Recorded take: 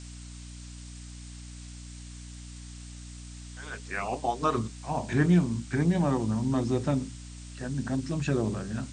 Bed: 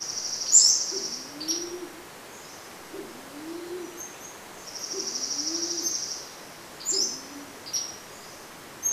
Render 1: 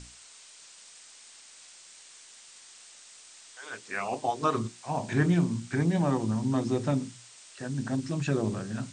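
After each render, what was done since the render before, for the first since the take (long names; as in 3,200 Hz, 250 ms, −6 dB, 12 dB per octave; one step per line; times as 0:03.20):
mains-hum notches 60/120/180/240/300/360 Hz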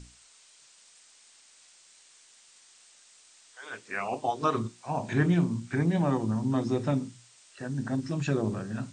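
noise reduction from a noise print 6 dB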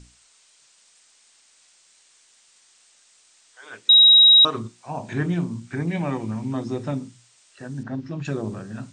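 0:03.89–0:04.45: beep over 3,820 Hz −8.5 dBFS
0:05.87–0:06.53: parametric band 2,300 Hz +13.5 dB 0.43 octaves
0:07.83–0:08.25: Gaussian smoothing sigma 1.8 samples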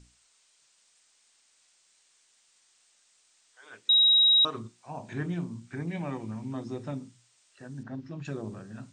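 level −8.5 dB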